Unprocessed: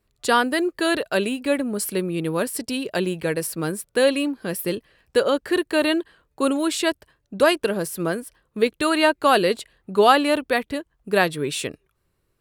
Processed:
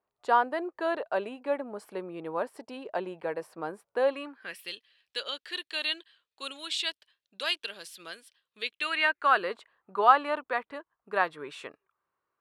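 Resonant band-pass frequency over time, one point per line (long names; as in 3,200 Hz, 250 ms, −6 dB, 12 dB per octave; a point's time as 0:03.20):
resonant band-pass, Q 2.2
0:04.07 840 Hz
0:04.71 3,500 Hz
0:08.60 3,500 Hz
0:09.50 1,100 Hz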